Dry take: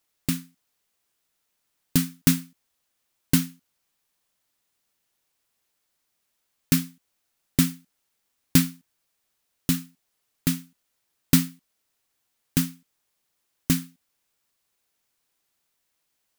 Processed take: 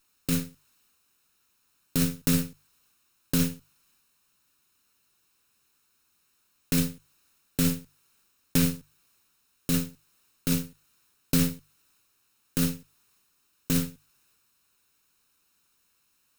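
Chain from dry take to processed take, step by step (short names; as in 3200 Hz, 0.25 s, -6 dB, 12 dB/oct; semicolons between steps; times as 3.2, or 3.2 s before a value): minimum comb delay 0.75 ms; notches 50/100/150 Hz; in parallel at +1 dB: negative-ratio compressor -27 dBFS, ratio -0.5; on the sum: transient shaper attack -4 dB, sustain +3 dB; gain -2.5 dB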